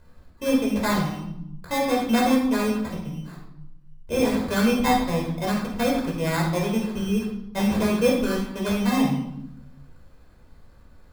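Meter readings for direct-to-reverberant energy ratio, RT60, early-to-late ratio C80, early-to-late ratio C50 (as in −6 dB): −2.5 dB, 0.80 s, 7.0 dB, 3.5 dB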